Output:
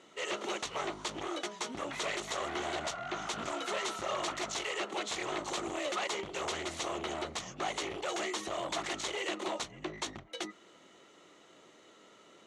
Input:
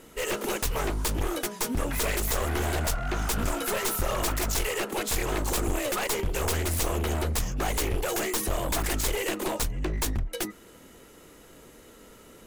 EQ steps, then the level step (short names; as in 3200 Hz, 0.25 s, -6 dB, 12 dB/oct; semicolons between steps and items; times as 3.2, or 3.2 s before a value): speaker cabinet 240–5900 Hz, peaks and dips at 250 Hz -7 dB, 470 Hz -8 dB, 920 Hz -4 dB, 1600 Hz -8 dB, 2500 Hz -5 dB, 5000 Hz -9 dB; low shelf 460 Hz -5.5 dB; 0.0 dB